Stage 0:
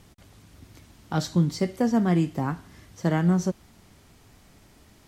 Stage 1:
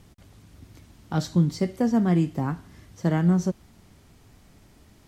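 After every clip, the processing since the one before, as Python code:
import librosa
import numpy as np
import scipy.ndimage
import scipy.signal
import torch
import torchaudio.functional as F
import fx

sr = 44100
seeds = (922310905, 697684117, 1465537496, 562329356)

y = fx.low_shelf(x, sr, hz=380.0, db=4.5)
y = y * librosa.db_to_amplitude(-2.5)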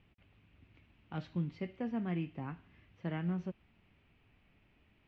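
y = fx.quant_companded(x, sr, bits=8)
y = fx.ladder_lowpass(y, sr, hz=2900.0, resonance_pct=65)
y = y * librosa.db_to_amplitude(-4.0)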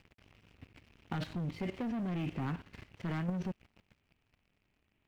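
y = fx.rider(x, sr, range_db=10, speed_s=2.0)
y = fx.leveller(y, sr, passes=3)
y = fx.level_steps(y, sr, step_db=14)
y = y * librosa.db_to_amplitude(7.0)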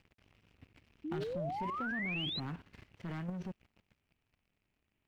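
y = fx.spec_paint(x, sr, seeds[0], shape='rise', start_s=1.04, length_s=1.36, low_hz=290.0, high_hz=4200.0, level_db=-34.0)
y = y * librosa.db_to_amplitude(-5.0)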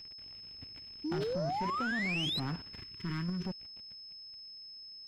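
y = x + 10.0 ** (-52.0 / 20.0) * np.sin(2.0 * np.pi * 5200.0 * np.arange(len(x)) / sr)
y = fx.spec_box(y, sr, start_s=2.82, length_s=0.63, low_hz=450.0, high_hz=940.0, gain_db=-25)
y = 10.0 ** (-32.5 / 20.0) * np.tanh(y / 10.0 ** (-32.5 / 20.0))
y = y * librosa.db_to_amplitude(5.5)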